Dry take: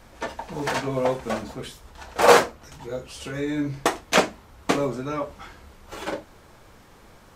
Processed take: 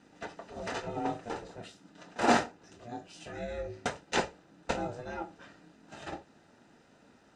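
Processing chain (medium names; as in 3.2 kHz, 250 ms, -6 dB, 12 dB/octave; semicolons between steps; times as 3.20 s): low-pass 8 kHz 24 dB/octave; ring modulator 240 Hz; comb of notches 1.1 kHz; trim -6.5 dB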